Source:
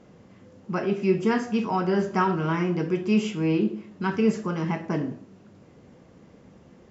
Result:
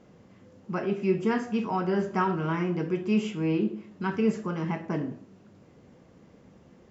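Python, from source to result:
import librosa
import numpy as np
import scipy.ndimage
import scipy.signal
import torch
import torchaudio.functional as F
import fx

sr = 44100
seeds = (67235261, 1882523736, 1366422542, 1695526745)

y = fx.dynamic_eq(x, sr, hz=5300.0, q=1.2, threshold_db=-55.0, ratio=4.0, max_db=-4)
y = y * librosa.db_to_amplitude(-3.0)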